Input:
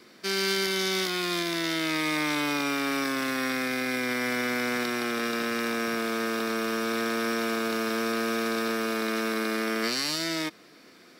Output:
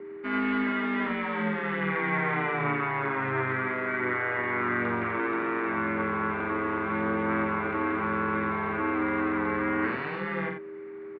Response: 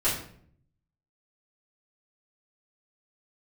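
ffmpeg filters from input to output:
-filter_complex "[0:a]aecho=1:1:49.56|87.46:0.562|0.447,aeval=exprs='val(0)+0.0126*sin(2*PI*530*n/s)':c=same,highpass=f=340:t=q:w=0.5412,highpass=f=340:t=q:w=1.307,lowpass=f=2.4k:t=q:w=0.5176,lowpass=f=2.4k:t=q:w=0.7071,lowpass=f=2.4k:t=q:w=1.932,afreqshift=-130,asplit=2[a][b];[b]asetrate=35002,aresample=44100,atempo=1.25992,volume=-9dB[c];[a][c]amix=inputs=2:normalize=0"

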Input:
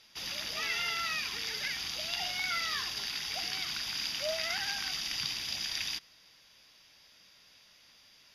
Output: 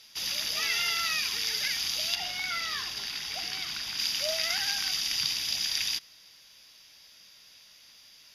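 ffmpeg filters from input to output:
-af "asetnsamples=n=441:p=0,asendcmd='2.15 highshelf g 2;3.99 highshelf g 9.5',highshelf=f=3.5k:g=11"

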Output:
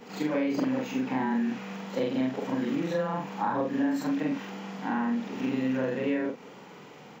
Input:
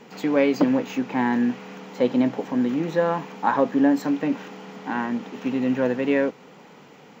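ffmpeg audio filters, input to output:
-filter_complex "[0:a]afftfilt=real='re':imag='-im':win_size=4096:overlap=0.75,acrossover=split=200|1200[a][b][c];[a]acompressor=threshold=-42dB:ratio=4[d];[b]acompressor=threshold=-33dB:ratio=4[e];[c]acompressor=threshold=-45dB:ratio=4[f];[d][e][f]amix=inputs=3:normalize=0,volume=4.5dB"

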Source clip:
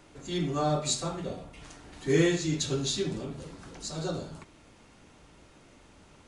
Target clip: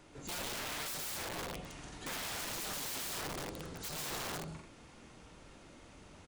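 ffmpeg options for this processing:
-af "aecho=1:1:131.2|174.9|218.7:0.708|0.562|0.447,acompressor=threshold=-31dB:ratio=3,aeval=exprs='(mod(42.2*val(0)+1,2)-1)/42.2':c=same,volume=-3dB"

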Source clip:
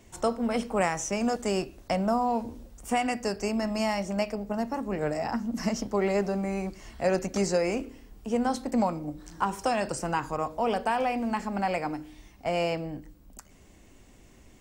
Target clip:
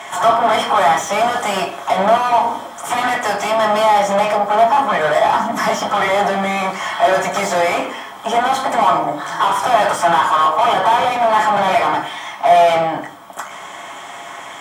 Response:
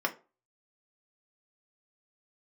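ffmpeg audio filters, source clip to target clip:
-filter_complex "[0:a]lowshelf=f=590:t=q:w=1.5:g=-12.5,aeval=exprs='0.282*sin(PI/2*2.24*val(0)/0.282)':c=same,asplit=2[a][b];[b]asetrate=55563,aresample=44100,atempo=0.793701,volume=-18dB[c];[a][c]amix=inputs=2:normalize=0,asplit=2[d][e];[e]highpass=f=720:p=1,volume=34dB,asoftclip=type=tanh:threshold=-3.5dB[f];[d][f]amix=inputs=2:normalize=0,lowpass=f=5.5k:p=1,volume=-6dB[g];[1:a]atrim=start_sample=2205,asetrate=26901,aresample=44100[h];[g][h]afir=irnorm=-1:irlink=0,volume=-15.5dB"

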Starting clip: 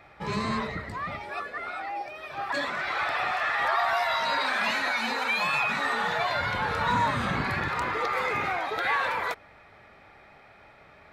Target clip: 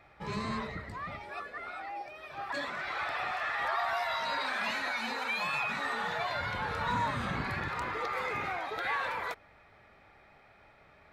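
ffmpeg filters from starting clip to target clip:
-af "lowshelf=f=67:g=5.5,volume=-6.5dB"

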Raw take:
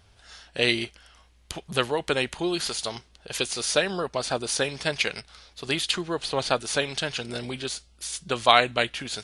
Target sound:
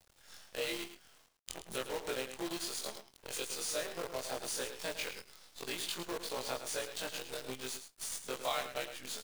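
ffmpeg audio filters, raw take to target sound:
-af "afftfilt=real='re':imag='-im':win_size=2048:overlap=0.75,equalizer=f=125:t=o:w=1:g=-10,equalizer=f=500:t=o:w=1:g=5,equalizer=f=8k:t=o:w=1:g=7,acompressor=threshold=-41dB:ratio=2,acrusher=bits=7:dc=4:mix=0:aa=0.000001,aecho=1:1:108:0.316,volume=-2.5dB"

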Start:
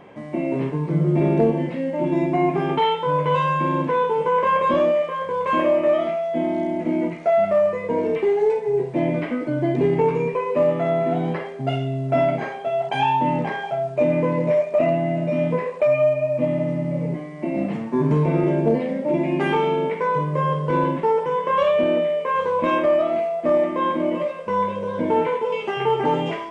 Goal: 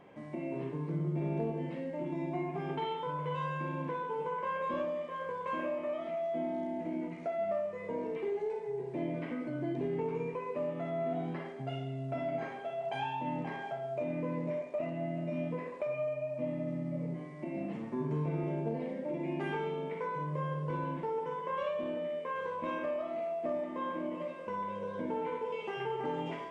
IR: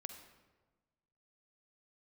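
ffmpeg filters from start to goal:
-filter_complex "[0:a]acompressor=threshold=-26dB:ratio=2[a];[1:a]atrim=start_sample=2205,asetrate=57330,aresample=44100[b];[a][b]afir=irnorm=-1:irlink=0,volume=-4.5dB"

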